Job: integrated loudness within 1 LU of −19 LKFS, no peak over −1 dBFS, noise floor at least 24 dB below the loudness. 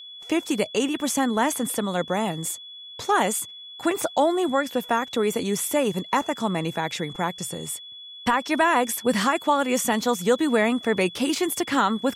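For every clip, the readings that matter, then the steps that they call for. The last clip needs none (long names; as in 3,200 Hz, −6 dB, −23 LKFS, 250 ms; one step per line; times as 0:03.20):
interfering tone 3,400 Hz; level of the tone −39 dBFS; integrated loudness −24.0 LKFS; sample peak −9.0 dBFS; target loudness −19.0 LKFS
→ notch filter 3,400 Hz, Q 30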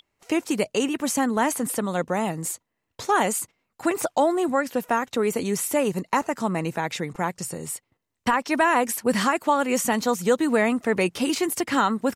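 interfering tone none found; integrated loudness −24.0 LKFS; sample peak −9.0 dBFS; target loudness −19.0 LKFS
→ level +5 dB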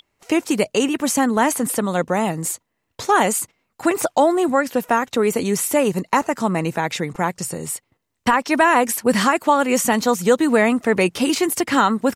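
integrated loudness −19.0 LKFS; sample peak −4.0 dBFS; background noise floor −74 dBFS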